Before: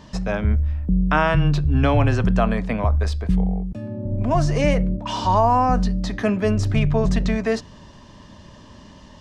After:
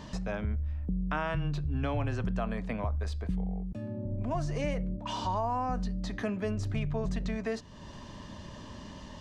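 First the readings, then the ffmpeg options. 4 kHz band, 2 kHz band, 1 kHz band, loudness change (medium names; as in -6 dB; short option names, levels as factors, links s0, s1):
-11.0 dB, -13.0 dB, -13.5 dB, -13.0 dB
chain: -af "bandreject=f=5300:w=27,acompressor=threshold=0.01:ratio=2"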